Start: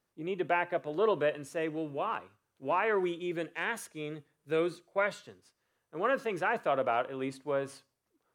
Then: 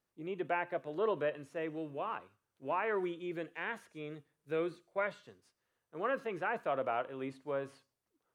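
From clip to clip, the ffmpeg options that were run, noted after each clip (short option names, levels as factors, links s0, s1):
-filter_complex "[0:a]acrossover=split=3400[s0][s1];[s1]acompressor=threshold=0.001:ratio=4:attack=1:release=60[s2];[s0][s2]amix=inputs=2:normalize=0,volume=0.562"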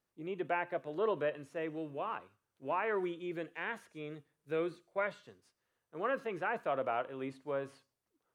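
-af anull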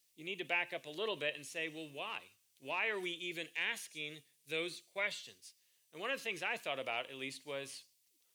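-af "aexciter=amount=8.7:drive=6.6:freq=2100,volume=0.447"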